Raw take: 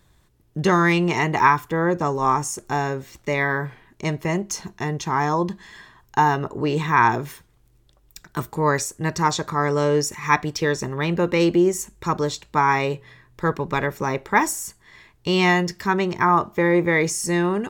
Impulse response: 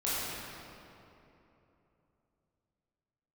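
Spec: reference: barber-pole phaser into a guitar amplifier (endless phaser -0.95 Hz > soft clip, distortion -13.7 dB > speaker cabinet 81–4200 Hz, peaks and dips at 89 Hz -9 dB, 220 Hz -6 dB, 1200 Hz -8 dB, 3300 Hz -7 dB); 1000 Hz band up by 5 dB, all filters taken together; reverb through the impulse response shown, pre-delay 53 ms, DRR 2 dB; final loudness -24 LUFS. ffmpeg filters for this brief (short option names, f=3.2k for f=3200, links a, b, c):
-filter_complex "[0:a]equalizer=f=1k:t=o:g=8.5,asplit=2[a][b];[1:a]atrim=start_sample=2205,adelay=53[c];[b][c]afir=irnorm=-1:irlink=0,volume=-10.5dB[d];[a][d]amix=inputs=2:normalize=0,asplit=2[e][f];[f]afreqshift=-0.95[g];[e][g]amix=inputs=2:normalize=1,asoftclip=threshold=-8dB,highpass=81,equalizer=f=89:t=q:w=4:g=-9,equalizer=f=220:t=q:w=4:g=-6,equalizer=f=1.2k:t=q:w=4:g=-8,equalizer=f=3.3k:t=q:w=4:g=-7,lowpass=f=4.2k:w=0.5412,lowpass=f=4.2k:w=1.3066,volume=-2dB"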